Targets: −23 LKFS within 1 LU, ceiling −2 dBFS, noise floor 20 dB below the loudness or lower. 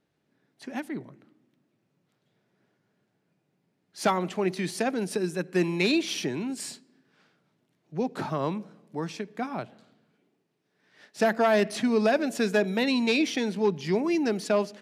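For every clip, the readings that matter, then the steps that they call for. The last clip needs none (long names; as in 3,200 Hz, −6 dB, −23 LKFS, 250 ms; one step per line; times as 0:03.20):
integrated loudness −27.5 LKFS; sample peak −11.5 dBFS; target loudness −23.0 LKFS
→ level +4.5 dB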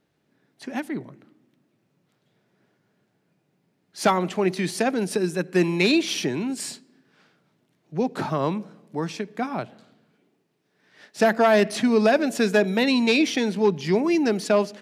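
integrated loudness −23.0 LKFS; sample peak −7.0 dBFS; background noise floor −71 dBFS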